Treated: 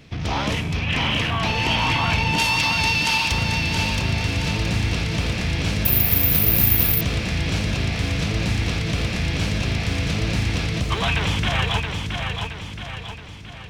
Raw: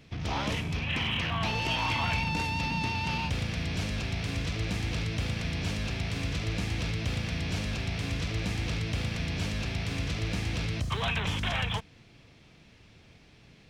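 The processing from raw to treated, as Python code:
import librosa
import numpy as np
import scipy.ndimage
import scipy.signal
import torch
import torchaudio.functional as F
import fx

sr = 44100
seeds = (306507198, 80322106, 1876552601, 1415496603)

y = fx.tilt_eq(x, sr, slope=3.5, at=(2.38, 3.32))
y = fx.echo_feedback(y, sr, ms=672, feedback_pct=49, wet_db=-5.0)
y = fx.resample_bad(y, sr, factor=3, down='none', up='zero_stuff', at=(5.85, 7.01))
y = y * librosa.db_to_amplitude(7.5)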